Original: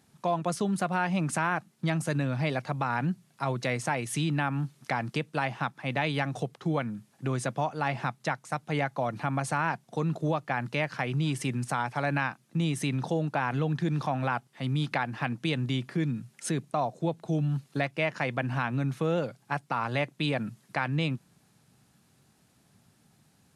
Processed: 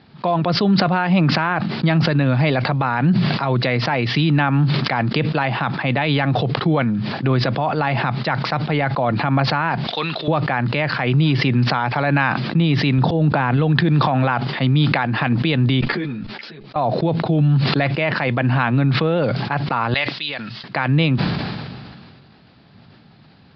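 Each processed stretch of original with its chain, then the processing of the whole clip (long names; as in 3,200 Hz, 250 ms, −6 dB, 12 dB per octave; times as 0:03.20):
0:09.87–0:10.28: high-pass filter 1,400 Hz 6 dB per octave + parametric band 3,400 Hz +12 dB 1.4 octaves
0:12.98–0:13.57: low-shelf EQ 350 Hz +6.5 dB + volume swells 106 ms
0:15.81–0:16.76: output level in coarse steps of 22 dB + parametric band 70 Hz −13.5 dB 2.6 octaves + string-ensemble chorus
0:19.94–0:20.64: first-order pre-emphasis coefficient 0.97 + notch filter 2,400 Hz, Q 21
whole clip: Butterworth low-pass 4,900 Hz 96 dB per octave; boost into a limiter +23 dB; level that may fall only so fast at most 29 dB per second; level −8.5 dB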